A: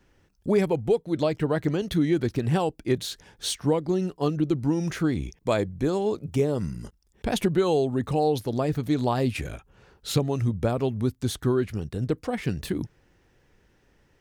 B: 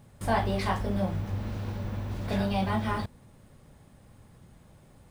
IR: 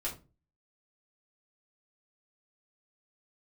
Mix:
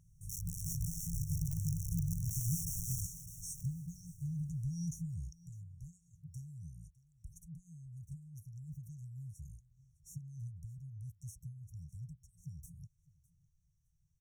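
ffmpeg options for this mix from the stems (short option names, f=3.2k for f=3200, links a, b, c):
-filter_complex "[0:a]acrossover=split=130|510[a][b][c];[a]acompressor=threshold=-33dB:ratio=4[d];[b]acompressor=threshold=-38dB:ratio=4[e];[c]acompressor=threshold=-37dB:ratio=4[f];[d][e][f]amix=inputs=3:normalize=0,volume=-2.5dB,afade=t=out:st=4.88:d=0.63:silence=0.334965,asplit=2[g][h];[h]volume=-21.5dB[i];[1:a]dynaudnorm=f=140:g=9:m=10dB,aeval=exprs='(mod(7.08*val(0)+1,2)-1)/7.08':c=same,volume=-12dB,asplit=2[j][k];[k]volume=-11.5dB[l];[i][l]amix=inputs=2:normalize=0,aecho=0:1:606|1212|1818|2424:1|0.22|0.0484|0.0106[m];[g][j][m]amix=inputs=3:normalize=0,afftfilt=real='re*(1-between(b*sr/4096,180,5500))':imag='im*(1-between(b*sr/4096,180,5500))':win_size=4096:overlap=0.75"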